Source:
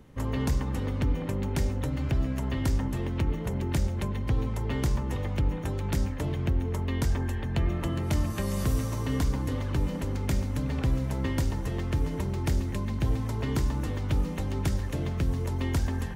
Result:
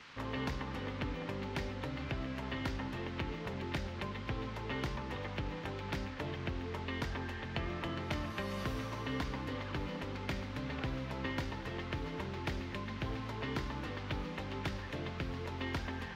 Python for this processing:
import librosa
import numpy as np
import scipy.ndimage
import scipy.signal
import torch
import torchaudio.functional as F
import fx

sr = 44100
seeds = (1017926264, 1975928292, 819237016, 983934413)

y = fx.tilt_eq(x, sr, slope=3.5)
y = fx.dmg_noise_band(y, sr, seeds[0], low_hz=950.0, high_hz=8000.0, level_db=-46.0)
y = fx.air_absorb(y, sr, metres=320.0)
y = y * 10.0 ** (-1.5 / 20.0)